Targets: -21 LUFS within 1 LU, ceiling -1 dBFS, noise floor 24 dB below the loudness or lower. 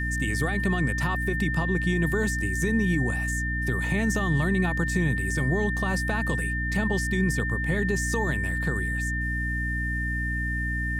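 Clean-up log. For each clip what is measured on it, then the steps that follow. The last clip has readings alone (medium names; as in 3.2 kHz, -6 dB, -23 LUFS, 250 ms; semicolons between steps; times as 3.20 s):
hum 60 Hz; highest harmonic 300 Hz; hum level -27 dBFS; steady tone 1.8 kHz; tone level -29 dBFS; loudness -26.0 LUFS; peak level -12.5 dBFS; loudness target -21.0 LUFS
-> hum notches 60/120/180/240/300 Hz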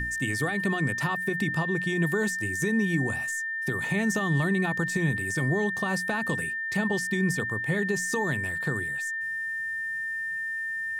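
hum not found; steady tone 1.8 kHz; tone level -29 dBFS
-> band-stop 1.8 kHz, Q 30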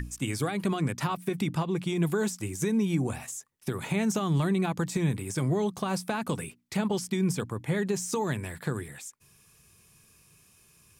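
steady tone not found; loudness -30.0 LUFS; peak level -15.5 dBFS; loudness target -21.0 LUFS
-> trim +9 dB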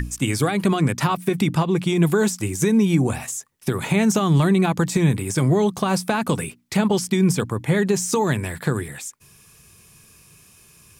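loudness -21.0 LUFS; peak level -6.5 dBFS; noise floor -52 dBFS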